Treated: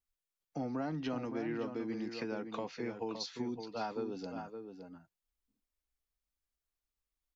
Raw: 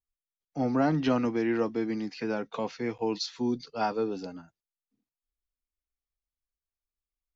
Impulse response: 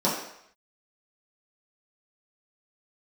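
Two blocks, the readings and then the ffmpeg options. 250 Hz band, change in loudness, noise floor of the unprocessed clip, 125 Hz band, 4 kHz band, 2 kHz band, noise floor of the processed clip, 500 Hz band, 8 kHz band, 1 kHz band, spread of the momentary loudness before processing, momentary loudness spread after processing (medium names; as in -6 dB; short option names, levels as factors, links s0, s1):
-9.5 dB, -9.5 dB, under -85 dBFS, -9.5 dB, -7.0 dB, -9.0 dB, under -85 dBFS, -9.0 dB, no reading, -9.5 dB, 9 LU, 10 LU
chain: -filter_complex "[0:a]acompressor=threshold=0.01:ratio=3,asplit=2[s0][s1];[s1]adelay=565.6,volume=0.447,highshelf=f=4000:g=-12.7[s2];[s0][s2]amix=inputs=2:normalize=0,volume=1.12"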